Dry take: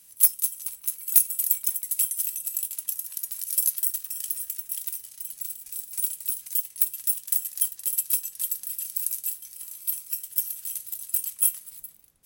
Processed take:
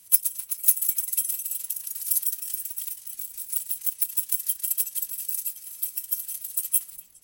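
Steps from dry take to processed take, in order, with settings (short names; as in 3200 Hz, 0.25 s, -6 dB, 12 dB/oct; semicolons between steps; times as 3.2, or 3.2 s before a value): time stretch by phase-locked vocoder 0.59×; delay with a stepping band-pass 0.136 s, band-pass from 800 Hz, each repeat 1.4 oct, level -12 dB; gain +2 dB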